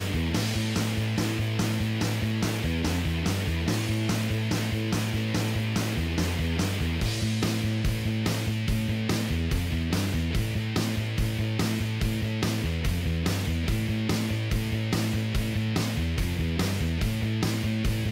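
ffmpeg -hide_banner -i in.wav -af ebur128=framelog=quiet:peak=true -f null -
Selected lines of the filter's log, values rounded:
Integrated loudness:
  I:         -27.7 LUFS
  Threshold: -37.7 LUFS
Loudness range:
  LRA:         0.6 LU
  Threshold: -47.7 LUFS
  LRA low:   -28.0 LUFS
  LRA high:  -27.4 LUFS
True peak:
  Peak:      -15.6 dBFS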